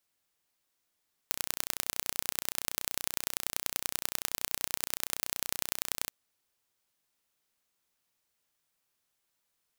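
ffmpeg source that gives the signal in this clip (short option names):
-f lavfi -i "aevalsrc='0.841*eq(mod(n,1441),0)*(0.5+0.5*eq(mod(n,4323),0))':d=4.78:s=44100"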